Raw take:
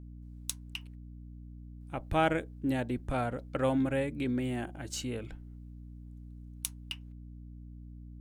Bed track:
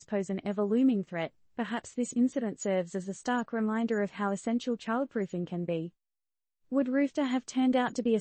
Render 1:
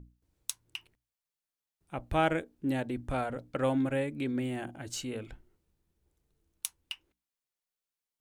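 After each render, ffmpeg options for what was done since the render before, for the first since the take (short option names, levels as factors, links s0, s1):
-af "bandreject=f=60:t=h:w=6,bandreject=f=120:t=h:w=6,bandreject=f=180:t=h:w=6,bandreject=f=240:t=h:w=6,bandreject=f=300:t=h:w=6"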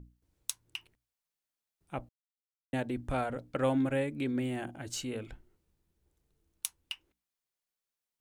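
-filter_complex "[0:a]asplit=3[s0][s1][s2];[s0]atrim=end=2.09,asetpts=PTS-STARTPTS,afade=t=out:st=2.086:d=0.004:c=hsin[s3];[s1]atrim=start=2.09:end=2.73,asetpts=PTS-STARTPTS,volume=0[s4];[s2]atrim=start=2.73,asetpts=PTS-STARTPTS,afade=t=in:d=0.004:c=hsin[s5];[s3][s4][s5]concat=n=3:v=0:a=1"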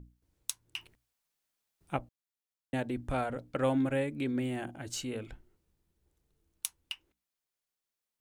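-filter_complex "[0:a]asettb=1/sr,asplit=3[s0][s1][s2];[s0]atrim=end=0.764[s3];[s1]atrim=start=0.76:end=1.97,asetpts=PTS-STARTPTS,afade=t=in:d=0.004:c=qsin,afade=t=out:st=1.206:d=0.004:c=qsin,acontrast=48[s4];[s2]atrim=start=1.966[s5];[s3][s4]acrossfade=d=0.004:c1=hsin:c2=qsin[s6];[s6][s5]acrossfade=d=0.004:c1=qsin:c2=hsin"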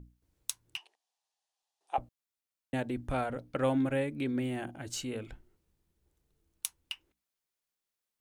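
-filter_complex "[0:a]asettb=1/sr,asplit=3[s0][s1][s2];[s0]atrim=end=0.774[s3];[s1]atrim=start=0.77:end=1.98,asetpts=PTS-STARTPTS,afade=t=in:d=0.004:c=qsin,afade=t=out:st=1.206:d=0.004:c=qsin,highpass=f=490:w=0.5412,highpass=f=490:w=1.3066,equalizer=f=540:t=q:w=4:g=-4,equalizer=f=790:t=q:w=4:g=9,equalizer=f=1400:t=q:w=4:g=-10,equalizer=f=2200:t=q:w=4:g=-8,equalizer=f=8000:t=q:w=4:g=-4,lowpass=f=8900:w=0.5412,lowpass=f=8900:w=1.3066[s4];[s2]atrim=start=1.976[s5];[s3][s4]acrossfade=d=0.004:c1=hsin:c2=qsin[s6];[s6][s5]acrossfade=d=0.004:c1=qsin:c2=hsin,asettb=1/sr,asplit=3[s7][s8][s9];[s7]atrim=end=3.064[s10];[s8]atrim=start=3.06:end=4.79,asetpts=PTS-STARTPTS,afade=t=in:d=0.004:c=qsin,afade=t=out:st=1.726:d=0.004:c=qsin,bandreject=f=7500:w=8[s11];[s9]atrim=start=4.786[s12];[s10][s11]acrossfade=d=0.004:c1=hsin:c2=qsin[s13];[s13][s12]acrossfade=d=0.004:c1=qsin:c2=hsin"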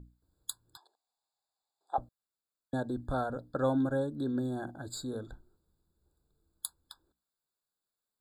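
-af "afftfilt=real='re*eq(mod(floor(b*sr/1024/1700),2),0)':imag='im*eq(mod(floor(b*sr/1024/1700),2),0)':win_size=1024:overlap=0.75"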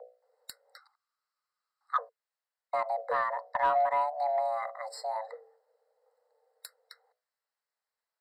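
-filter_complex "[0:a]afreqshift=440,asplit=2[s0][s1];[s1]highpass=f=720:p=1,volume=3.55,asoftclip=type=tanh:threshold=0.188[s2];[s0][s2]amix=inputs=2:normalize=0,lowpass=f=1800:p=1,volume=0.501"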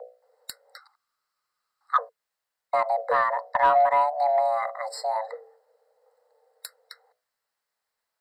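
-af "volume=2.24"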